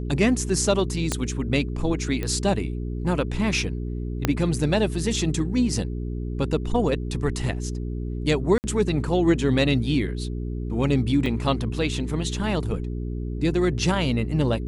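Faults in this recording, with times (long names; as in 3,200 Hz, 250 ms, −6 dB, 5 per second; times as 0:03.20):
mains hum 60 Hz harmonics 7 −29 dBFS
0:01.12: click −9 dBFS
0:02.23: click −15 dBFS
0:04.25: click −6 dBFS
0:08.58–0:08.64: drop-out 59 ms
0:11.26: drop-out 2.3 ms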